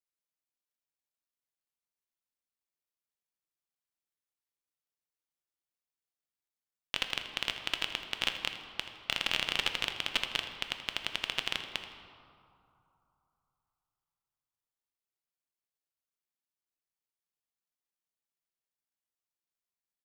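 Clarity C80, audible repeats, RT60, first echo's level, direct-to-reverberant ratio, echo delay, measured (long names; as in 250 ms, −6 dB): 7.5 dB, 1, 2.9 s, −14.0 dB, 5.0 dB, 81 ms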